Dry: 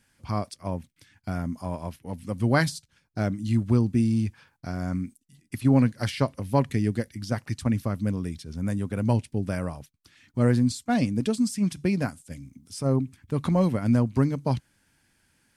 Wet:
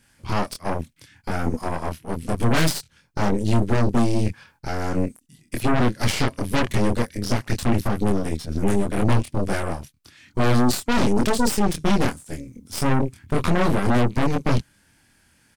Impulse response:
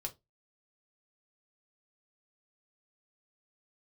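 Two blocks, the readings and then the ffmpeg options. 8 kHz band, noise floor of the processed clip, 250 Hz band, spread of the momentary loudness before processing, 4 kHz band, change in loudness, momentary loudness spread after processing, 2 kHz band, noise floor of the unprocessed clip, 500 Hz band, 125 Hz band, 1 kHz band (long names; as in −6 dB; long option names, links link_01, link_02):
+8.5 dB, −61 dBFS, +2.0 dB, 14 LU, +9.5 dB, +3.0 dB, 11 LU, +7.0 dB, −69 dBFS, +5.0 dB, +1.5 dB, +8.0 dB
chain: -filter_complex "[0:a]asplit=2[link_01][link_02];[link_02]alimiter=limit=-21.5dB:level=0:latency=1,volume=0dB[link_03];[link_01][link_03]amix=inputs=2:normalize=0,asplit=2[link_04][link_05];[link_05]adelay=25,volume=-2.5dB[link_06];[link_04][link_06]amix=inputs=2:normalize=0,asoftclip=type=tanh:threshold=-6dB,aeval=exprs='0.447*(cos(1*acos(clip(val(0)/0.447,-1,1)))-cos(1*PI/2))+0.1*(cos(5*acos(clip(val(0)/0.447,-1,1)))-cos(5*PI/2))+0.224*(cos(8*acos(clip(val(0)/0.447,-1,1)))-cos(8*PI/2))':channel_layout=same,volume=-7.5dB"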